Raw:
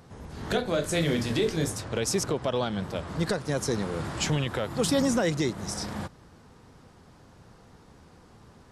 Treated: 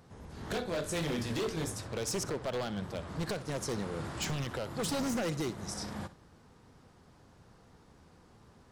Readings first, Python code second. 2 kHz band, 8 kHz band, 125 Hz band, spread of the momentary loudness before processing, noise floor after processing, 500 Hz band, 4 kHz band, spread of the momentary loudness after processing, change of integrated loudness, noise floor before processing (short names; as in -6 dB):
-7.0 dB, -6.5 dB, -7.5 dB, 8 LU, -60 dBFS, -8.0 dB, -7.0 dB, 6 LU, -7.5 dB, -55 dBFS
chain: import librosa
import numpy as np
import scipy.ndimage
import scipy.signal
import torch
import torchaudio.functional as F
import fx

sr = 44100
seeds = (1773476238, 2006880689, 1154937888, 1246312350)

y = 10.0 ** (-21.5 / 20.0) * (np.abs((x / 10.0 ** (-21.5 / 20.0) + 3.0) % 4.0 - 2.0) - 1.0)
y = fx.room_flutter(y, sr, wall_m=10.8, rt60_s=0.24)
y = y * librosa.db_to_amplitude(-6.0)